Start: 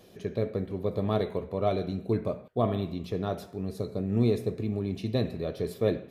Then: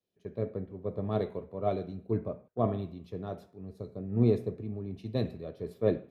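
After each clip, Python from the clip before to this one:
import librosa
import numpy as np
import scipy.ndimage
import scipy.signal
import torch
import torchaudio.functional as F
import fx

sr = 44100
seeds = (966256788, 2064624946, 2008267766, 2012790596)

y = fx.high_shelf(x, sr, hz=2300.0, db=-11.5)
y = fx.band_widen(y, sr, depth_pct=100)
y = F.gain(torch.from_numpy(y), -4.0).numpy()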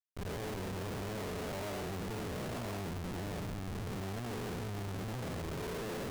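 y = fx.spec_blur(x, sr, span_ms=256.0)
y = fx.schmitt(y, sr, flips_db=-48.0)
y = F.gain(torch.from_numpy(y), -2.5).numpy()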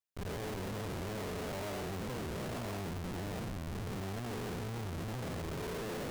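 y = fx.record_warp(x, sr, rpm=45.0, depth_cents=250.0)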